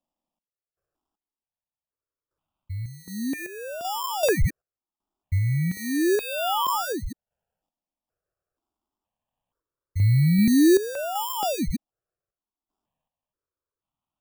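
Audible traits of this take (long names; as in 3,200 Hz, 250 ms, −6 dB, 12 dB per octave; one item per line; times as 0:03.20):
aliases and images of a low sample rate 2,100 Hz, jitter 0%
sample-and-hold tremolo 2.6 Hz, depth 90%
notches that jump at a steady rate 2.1 Hz 420–1,700 Hz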